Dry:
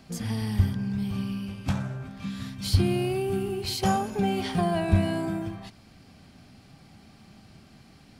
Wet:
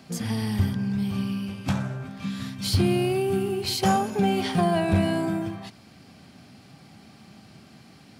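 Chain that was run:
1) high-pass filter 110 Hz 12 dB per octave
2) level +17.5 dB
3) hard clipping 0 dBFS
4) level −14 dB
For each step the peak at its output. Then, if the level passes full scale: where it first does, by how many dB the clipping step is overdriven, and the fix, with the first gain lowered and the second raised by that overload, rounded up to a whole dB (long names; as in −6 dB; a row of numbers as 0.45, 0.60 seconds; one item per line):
−12.5, +5.0, 0.0, −14.0 dBFS
step 2, 5.0 dB
step 2 +12.5 dB, step 4 −9 dB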